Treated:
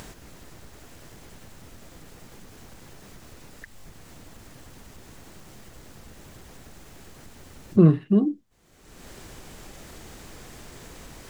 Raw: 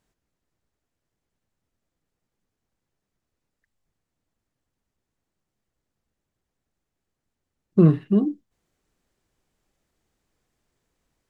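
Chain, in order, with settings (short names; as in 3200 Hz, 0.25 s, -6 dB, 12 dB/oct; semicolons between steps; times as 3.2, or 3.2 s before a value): upward compressor, threshold -18 dBFS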